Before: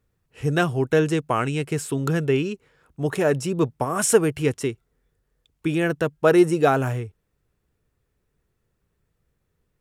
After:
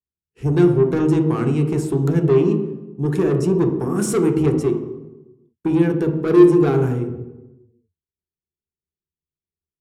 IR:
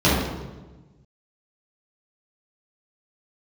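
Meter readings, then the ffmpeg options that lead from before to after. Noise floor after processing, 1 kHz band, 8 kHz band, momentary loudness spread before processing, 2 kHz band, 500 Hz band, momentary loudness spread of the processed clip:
under -85 dBFS, -3.5 dB, -5.5 dB, 11 LU, -7.0 dB, +3.5 dB, 13 LU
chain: -filter_complex "[0:a]lowshelf=f=490:t=q:w=3:g=6,acontrast=71,agate=range=0.0224:threshold=0.02:ratio=3:detection=peak,asoftclip=type=tanh:threshold=0.708,asplit=2[s0][s1];[1:a]atrim=start_sample=2205,asetrate=52920,aresample=44100[s2];[s1][s2]afir=irnorm=-1:irlink=0,volume=0.0596[s3];[s0][s3]amix=inputs=2:normalize=0,volume=0.266"

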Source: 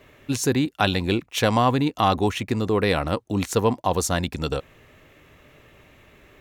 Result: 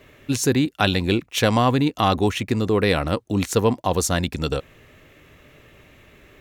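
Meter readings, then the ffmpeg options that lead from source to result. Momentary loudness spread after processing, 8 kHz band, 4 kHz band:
6 LU, +2.5 dB, +2.5 dB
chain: -af "equalizer=f=890:w=1.5:g=-3.5,volume=1.33"

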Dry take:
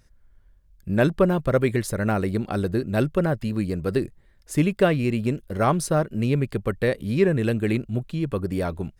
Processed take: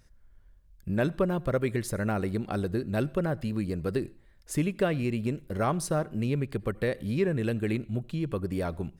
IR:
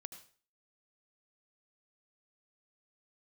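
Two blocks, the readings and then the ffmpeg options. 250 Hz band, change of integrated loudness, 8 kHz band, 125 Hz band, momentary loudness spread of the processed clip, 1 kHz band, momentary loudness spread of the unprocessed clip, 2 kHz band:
-6.0 dB, -6.0 dB, -4.5 dB, -6.0 dB, 5 LU, -6.5 dB, 7 LU, -6.5 dB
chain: -filter_complex "[0:a]acompressor=threshold=0.0282:ratio=1.5,asplit=2[s0][s1];[1:a]atrim=start_sample=2205,afade=t=out:st=0.26:d=0.01,atrim=end_sample=11907[s2];[s1][s2]afir=irnorm=-1:irlink=0,volume=0.376[s3];[s0][s3]amix=inputs=2:normalize=0,volume=0.708"

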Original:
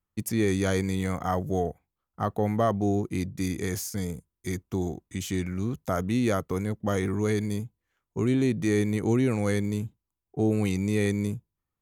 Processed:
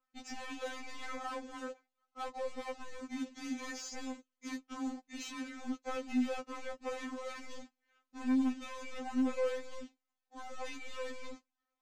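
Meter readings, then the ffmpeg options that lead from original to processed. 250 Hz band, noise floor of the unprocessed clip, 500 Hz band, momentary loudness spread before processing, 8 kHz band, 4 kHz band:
-11.0 dB, under -85 dBFS, -13.0 dB, 9 LU, -11.5 dB, -7.0 dB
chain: -filter_complex "[0:a]alimiter=limit=0.133:level=0:latency=1:release=322,asplit=2[s0][s1];[s1]highpass=f=720:p=1,volume=7.08,asoftclip=type=tanh:threshold=0.133[s2];[s0][s2]amix=inputs=2:normalize=0,lowpass=f=2300:p=1,volume=0.501,aresample=16000,acrusher=bits=3:mode=log:mix=0:aa=0.000001,aresample=44100,asoftclip=type=tanh:threshold=0.0355,afftfilt=real='re*3.46*eq(mod(b,12),0)':imag='im*3.46*eq(mod(b,12),0)':win_size=2048:overlap=0.75,volume=0.668"

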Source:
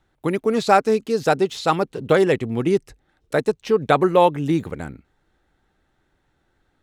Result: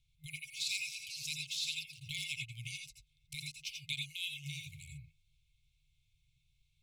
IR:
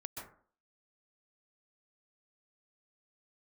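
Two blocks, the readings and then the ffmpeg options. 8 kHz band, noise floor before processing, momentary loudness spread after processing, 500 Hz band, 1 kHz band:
no reading, -69 dBFS, 12 LU, under -40 dB, under -40 dB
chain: -filter_complex "[1:a]atrim=start_sample=2205,atrim=end_sample=6615,asetrate=66150,aresample=44100[s0];[0:a][s0]afir=irnorm=-1:irlink=0,acrossover=split=2300[s1][s2];[s1]acompressor=threshold=0.00891:ratio=4[s3];[s3][s2]amix=inputs=2:normalize=0,afftfilt=real='re*(1-between(b*sr/4096,160,2100))':imag='im*(1-between(b*sr/4096,160,2100))':win_size=4096:overlap=0.75,equalizer=f=99:w=0.37:g=-4,volume=1.68"

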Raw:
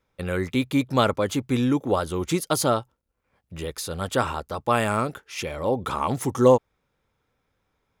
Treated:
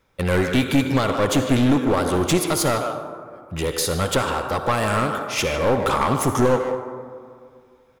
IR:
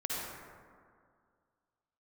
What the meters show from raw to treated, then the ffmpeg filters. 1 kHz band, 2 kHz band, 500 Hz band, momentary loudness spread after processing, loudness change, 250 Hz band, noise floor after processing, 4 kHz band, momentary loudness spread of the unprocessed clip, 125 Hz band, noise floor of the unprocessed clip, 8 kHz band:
+3.5 dB, +6.0 dB, +2.5 dB, 11 LU, +3.5 dB, +4.0 dB, -55 dBFS, +5.5 dB, 11 LU, +4.5 dB, -75 dBFS, +6.0 dB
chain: -filter_complex "[0:a]alimiter=limit=0.168:level=0:latency=1:release=373,asplit=2[s0][s1];[s1]adelay=150,highpass=300,lowpass=3400,asoftclip=type=hard:threshold=0.0631,volume=0.398[s2];[s0][s2]amix=inputs=2:normalize=0,asplit=2[s3][s4];[1:a]atrim=start_sample=2205,lowshelf=f=230:g=-9[s5];[s4][s5]afir=irnorm=-1:irlink=0,volume=0.376[s6];[s3][s6]amix=inputs=2:normalize=0,aeval=exprs='clip(val(0),-1,0.0562)':c=same,volume=2.24"

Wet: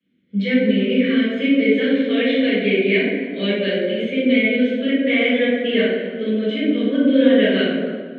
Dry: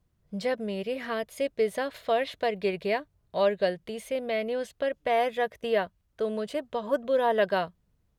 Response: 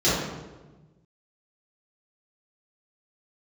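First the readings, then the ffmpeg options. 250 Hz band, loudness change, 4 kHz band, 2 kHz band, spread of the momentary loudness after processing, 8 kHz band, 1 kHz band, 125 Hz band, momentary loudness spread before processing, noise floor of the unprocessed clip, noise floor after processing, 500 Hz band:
+20.5 dB, +11.0 dB, +14.0 dB, +13.0 dB, 6 LU, no reading, -7.5 dB, +14.5 dB, 8 LU, -71 dBFS, -33 dBFS, +7.5 dB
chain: -filter_complex "[0:a]asplit=3[s0][s1][s2];[s0]bandpass=f=270:t=q:w=8,volume=1[s3];[s1]bandpass=f=2290:t=q:w=8,volume=0.501[s4];[s2]bandpass=f=3010:t=q:w=8,volume=0.355[s5];[s3][s4][s5]amix=inputs=3:normalize=0,highpass=210,equalizer=f=290:t=q:w=4:g=-5,equalizer=f=520:t=q:w=4:g=8,equalizer=f=1500:t=q:w=4:g=7,lowpass=f=7600:w=0.5412,lowpass=f=7600:w=1.3066[s6];[1:a]atrim=start_sample=2205,asetrate=25137,aresample=44100[s7];[s6][s7]afir=irnorm=-1:irlink=0,volume=1.5"

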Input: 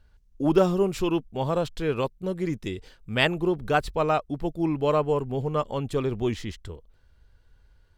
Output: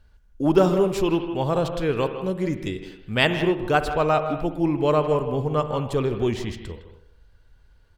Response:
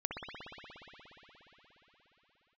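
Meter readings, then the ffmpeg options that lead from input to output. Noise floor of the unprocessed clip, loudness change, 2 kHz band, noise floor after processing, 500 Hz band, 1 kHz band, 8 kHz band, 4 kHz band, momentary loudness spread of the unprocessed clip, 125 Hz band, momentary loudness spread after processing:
-60 dBFS, +3.0 dB, +3.0 dB, -55 dBFS, +3.5 dB, +3.0 dB, no reading, +3.0 dB, 10 LU, +3.0 dB, 10 LU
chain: -filter_complex "[0:a]asplit=2[s0][s1];[s1]adelay=160,highpass=300,lowpass=3400,asoftclip=type=hard:threshold=0.188,volume=0.282[s2];[s0][s2]amix=inputs=2:normalize=0,asplit=2[s3][s4];[1:a]atrim=start_sample=2205,afade=t=out:st=0.34:d=0.01,atrim=end_sample=15435[s5];[s4][s5]afir=irnorm=-1:irlink=0,volume=0.422[s6];[s3][s6]amix=inputs=2:normalize=0"

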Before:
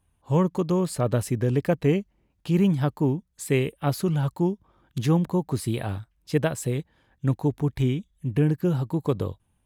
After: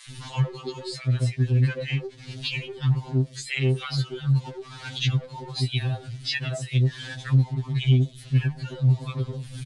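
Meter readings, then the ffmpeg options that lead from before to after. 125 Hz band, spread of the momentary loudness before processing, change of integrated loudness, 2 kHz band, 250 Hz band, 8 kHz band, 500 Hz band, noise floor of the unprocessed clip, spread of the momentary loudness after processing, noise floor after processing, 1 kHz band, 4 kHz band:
+3.0 dB, 7 LU, -0.5 dB, +4.5 dB, -7.0 dB, -3.5 dB, -9.0 dB, -70 dBFS, 10 LU, -45 dBFS, -7.0 dB, +10.0 dB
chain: -filter_complex "[0:a]aeval=exprs='val(0)+0.5*0.015*sgn(val(0))':c=same,afftdn=nr=12:nf=-41,acrossover=split=810[s0][s1];[s0]adelay=90[s2];[s2][s1]amix=inputs=2:normalize=0,asplit=2[s3][s4];[s4]asoftclip=type=tanh:threshold=0.075,volume=0.668[s5];[s3][s5]amix=inputs=2:normalize=0,tiltshelf=f=730:g=-5.5,acompressor=threshold=0.02:ratio=5,aresample=22050,aresample=44100,equalizer=f=125:t=o:w=1:g=9,equalizer=f=1000:t=o:w=1:g=-6,equalizer=f=2000:t=o:w=1:g=3,equalizer=f=4000:t=o:w=1:g=11,acrossover=split=5000[s6][s7];[s7]acompressor=threshold=0.00501:ratio=4:attack=1:release=60[s8];[s6][s8]amix=inputs=2:normalize=0,afftfilt=real='re*2.45*eq(mod(b,6),0)':imag='im*2.45*eq(mod(b,6),0)':win_size=2048:overlap=0.75,volume=1.78"

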